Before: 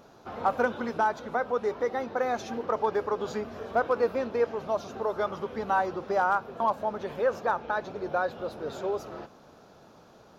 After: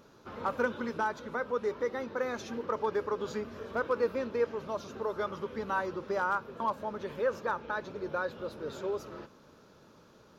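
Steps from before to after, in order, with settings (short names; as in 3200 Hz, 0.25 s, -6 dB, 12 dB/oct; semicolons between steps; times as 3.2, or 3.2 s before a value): bell 730 Hz -14 dB 0.3 oct; gain -2.5 dB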